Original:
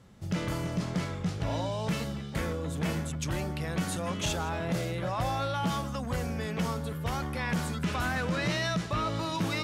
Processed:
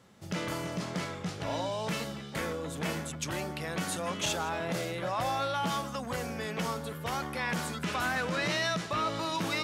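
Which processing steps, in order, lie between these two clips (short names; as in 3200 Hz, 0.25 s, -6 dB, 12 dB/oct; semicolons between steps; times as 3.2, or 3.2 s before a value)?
HPF 330 Hz 6 dB/oct; gain +1.5 dB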